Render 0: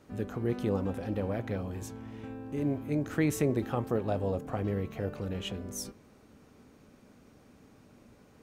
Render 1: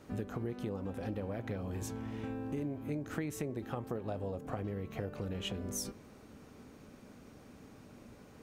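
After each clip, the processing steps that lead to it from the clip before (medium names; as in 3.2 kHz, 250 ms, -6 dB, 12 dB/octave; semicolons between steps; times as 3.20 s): compression 12:1, threshold -37 dBFS, peak gain reduction 15 dB; trim +3 dB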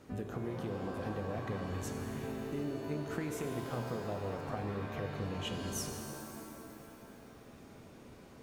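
pitch-shifted reverb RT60 2.2 s, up +7 st, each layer -2 dB, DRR 5.5 dB; trim -1.5 dB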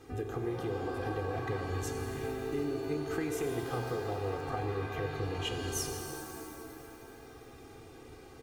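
comb 2.5 ms, depth 80%; trim +1.5 dB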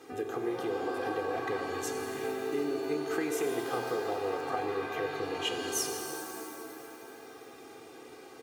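high-pass 290 Hz 12 dB/octave; trim +4 dB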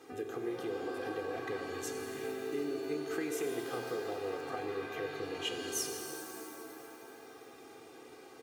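dynamic bell 900 Hz, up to -6 dB, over -48 dBFS, Q 1.6; trim -3.5 dB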